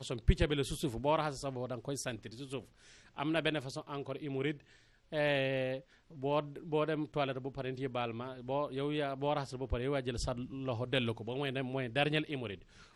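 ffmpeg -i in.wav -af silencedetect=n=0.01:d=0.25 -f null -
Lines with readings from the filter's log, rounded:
silence_start: 2.60
silence_end: 3.19 | silence_duration: 0.58
silence_start: 4.52
silence_end: 5.13 | silence_duration: 0.61
silence_start: 5.78
silence_end: 6.22 | silence_duration: 0.44
silence_start: 12.55
silence_end: 12.95 | silence_duration: 0.41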